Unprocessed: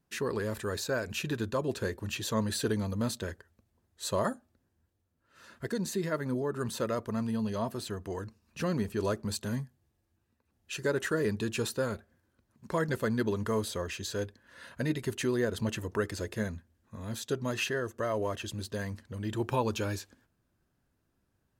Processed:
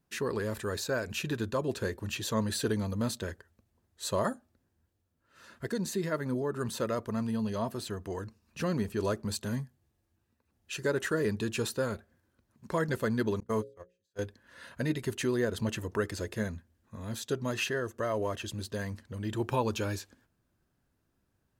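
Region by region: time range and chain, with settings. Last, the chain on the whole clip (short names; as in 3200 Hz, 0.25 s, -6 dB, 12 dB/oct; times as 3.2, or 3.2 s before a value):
13.4–14.19 gate -31 dBFS, range -45 dB + notches 60/120/180/240/300/360/420/480/540 Hz
whole clip: dry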